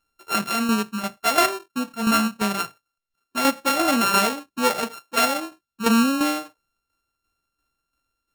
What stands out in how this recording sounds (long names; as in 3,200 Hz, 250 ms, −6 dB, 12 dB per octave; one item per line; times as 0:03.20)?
a buzz of ramps at a fixed pitch in blocks of 32 samples
tremolo saw down 2.9 Hz, depth 55%